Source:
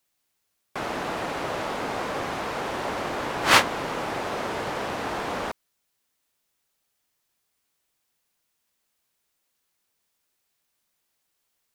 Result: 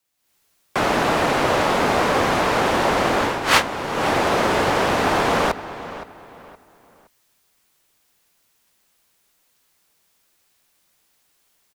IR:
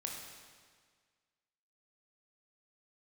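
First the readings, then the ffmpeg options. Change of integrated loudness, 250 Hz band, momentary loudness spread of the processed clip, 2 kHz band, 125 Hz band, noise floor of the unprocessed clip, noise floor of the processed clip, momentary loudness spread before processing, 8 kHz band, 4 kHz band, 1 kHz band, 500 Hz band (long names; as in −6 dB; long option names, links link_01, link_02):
+7.5 dB, +10.0 dB, 9 LU, +6.5 dB, +10.0 dB, −76 dBFS, −65 dBFS, 13 LU, +5.0 dB, +5.0 dB, +8.5 dB, +10.0 dB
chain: -filter_complex "[0:a]afreqshift=-18,dynaudnorm=framelen=170:gausssize=3:maxgain=12dB,asplit=2[link_01][link_02];[link_02]adelay=518,lowpass=frequency=3800:poles=1,volume=-14dB,asplit=2[link_03][link_04];[link_04]adelay=518,lowpass=frequency=3800:poles=1,volume=0.32,asplit=2[link_05][link_06];[link_06]adelay=518,lowpass=frequency=3800:poles=1,volume=0.32[link_07];[link_01][link_03][link_05][link_07]amix=inputs=4:normalize=0,volume=-1dB"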